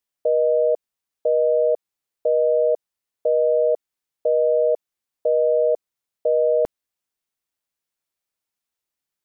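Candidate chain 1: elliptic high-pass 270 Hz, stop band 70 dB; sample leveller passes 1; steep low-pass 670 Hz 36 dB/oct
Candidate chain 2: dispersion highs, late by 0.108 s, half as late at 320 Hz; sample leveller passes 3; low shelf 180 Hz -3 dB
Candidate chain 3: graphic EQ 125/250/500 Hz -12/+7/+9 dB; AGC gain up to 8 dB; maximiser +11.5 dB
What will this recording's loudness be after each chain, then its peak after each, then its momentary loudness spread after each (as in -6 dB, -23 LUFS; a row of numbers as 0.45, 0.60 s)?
-21.0, -17.5, -10.0 LUFS; -12.0, -11.0, -1.0 dBFS; 9, 10, 9 LU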